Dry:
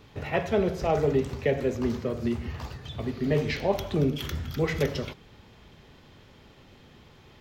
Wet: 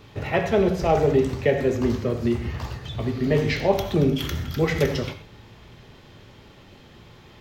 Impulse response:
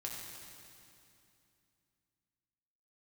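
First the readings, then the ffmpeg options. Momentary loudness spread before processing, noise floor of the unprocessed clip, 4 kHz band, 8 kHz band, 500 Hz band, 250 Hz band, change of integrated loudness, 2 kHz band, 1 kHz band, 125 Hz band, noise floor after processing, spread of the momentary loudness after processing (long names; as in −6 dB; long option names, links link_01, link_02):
10 LU, −54 dBFS, +5.0 dB, +5.0 dB, +5.0 dB, +5.0 dB, +5.0 dB, +5.0 dB, +5.5 dB, +5.0 dB, −49 dBFS, 9 LU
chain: -filter_complex "[0:a]asplit=2[link_01][link_02];[1:a]atrim=start_sample=2205,atrim=end_sample=6174[link_03];[link_02][link_03]afir=irnorm=-1:irlink=0,volume=1dB[link_04];[link_01][link_04]amix=inputs=2:normalize=0"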